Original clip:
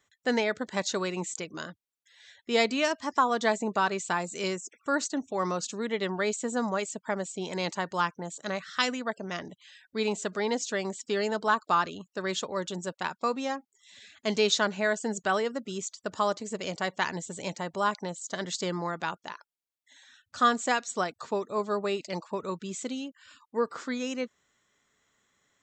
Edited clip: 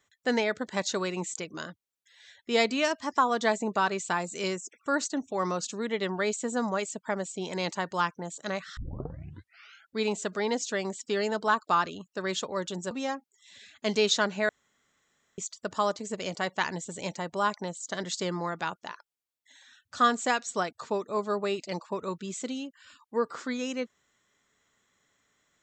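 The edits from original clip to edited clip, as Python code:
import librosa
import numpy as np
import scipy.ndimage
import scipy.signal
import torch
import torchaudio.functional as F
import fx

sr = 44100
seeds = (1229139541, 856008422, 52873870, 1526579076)

y = fx.edit(x, sr, fx.tape_start(start_s=8.77, length_s=1.19),
    fx.cut(start_s=12.91, length_s=0.41),
    fx.room_tone_fill(start_s=14.9, length_s=0.89), tone=tone)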